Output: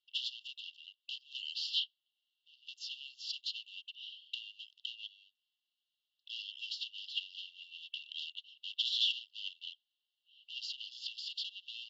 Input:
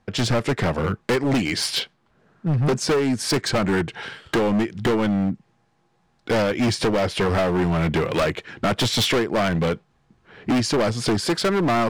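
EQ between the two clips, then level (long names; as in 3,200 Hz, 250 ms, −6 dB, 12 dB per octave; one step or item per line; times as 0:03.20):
linear-phase brick-wall band-pass 2,700–7,500 Hz
high-frequency loss of the air 420 metres
+3.0 dB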